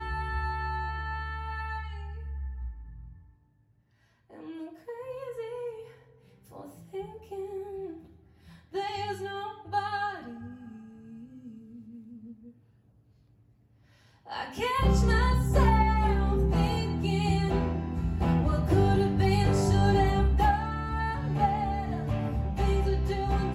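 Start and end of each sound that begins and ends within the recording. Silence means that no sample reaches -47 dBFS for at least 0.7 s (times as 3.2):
4.3–12.51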